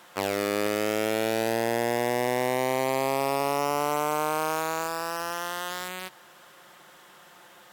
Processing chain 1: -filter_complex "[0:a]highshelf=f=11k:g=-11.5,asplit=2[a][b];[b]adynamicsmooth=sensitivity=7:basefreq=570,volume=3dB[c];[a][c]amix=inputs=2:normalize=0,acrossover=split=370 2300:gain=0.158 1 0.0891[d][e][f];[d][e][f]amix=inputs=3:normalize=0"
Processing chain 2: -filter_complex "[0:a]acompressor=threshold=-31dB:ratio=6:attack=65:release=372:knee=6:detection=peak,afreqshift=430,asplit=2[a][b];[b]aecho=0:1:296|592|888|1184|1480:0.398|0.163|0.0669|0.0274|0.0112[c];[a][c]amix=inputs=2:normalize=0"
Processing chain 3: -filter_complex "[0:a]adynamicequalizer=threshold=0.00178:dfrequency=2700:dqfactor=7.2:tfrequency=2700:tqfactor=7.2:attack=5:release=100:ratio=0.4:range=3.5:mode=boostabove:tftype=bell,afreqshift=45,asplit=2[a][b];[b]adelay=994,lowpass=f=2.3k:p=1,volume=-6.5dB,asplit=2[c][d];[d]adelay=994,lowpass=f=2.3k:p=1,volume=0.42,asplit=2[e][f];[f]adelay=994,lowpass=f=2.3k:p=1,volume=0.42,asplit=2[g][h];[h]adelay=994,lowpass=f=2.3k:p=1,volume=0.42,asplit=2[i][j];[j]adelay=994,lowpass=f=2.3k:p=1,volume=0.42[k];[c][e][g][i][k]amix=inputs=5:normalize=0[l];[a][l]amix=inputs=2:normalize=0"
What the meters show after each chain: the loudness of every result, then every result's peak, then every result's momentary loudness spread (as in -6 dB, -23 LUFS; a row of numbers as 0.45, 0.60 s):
-22.0, -31.0, -26.5 LUFS; -9.0, -15.0, -12.0 dBFS; 7, 18, 14 LU